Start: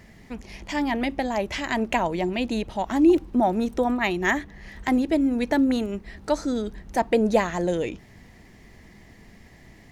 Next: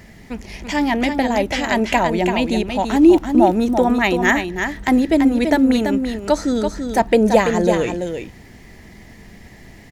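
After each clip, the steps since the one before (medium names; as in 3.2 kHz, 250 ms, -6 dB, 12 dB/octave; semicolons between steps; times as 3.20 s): treble shelf 9.4 kHz +3.5 dB; band-stop 1.1 kHz, Q 16; on a send: delay 335 ms -6.5 dB; on the sum: trim +6.5 dB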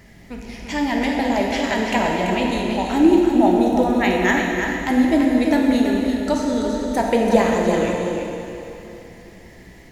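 plate-style reverb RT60 3 s, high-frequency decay 0.95×, DRR -0.5 dB; trim -5 dB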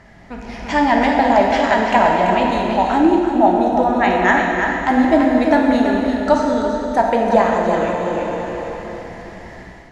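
high-order bell 1 kHz +8 dB; level rider gain up to 6.5 dB; distance through air 65 m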